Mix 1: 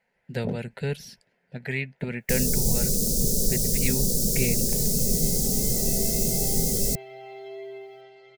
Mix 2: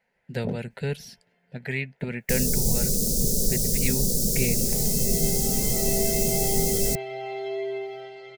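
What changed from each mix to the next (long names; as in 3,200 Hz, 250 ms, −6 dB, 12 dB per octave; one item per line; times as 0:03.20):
second sound +8.5 dB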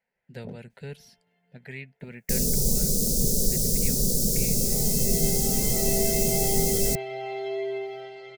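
speech −10.0 dB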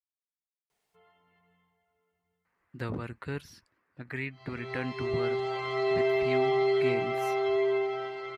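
speech: entry +2.45 s
first sound: muted
master: remove phaser with its sweep stopped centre 310 Hz, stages 6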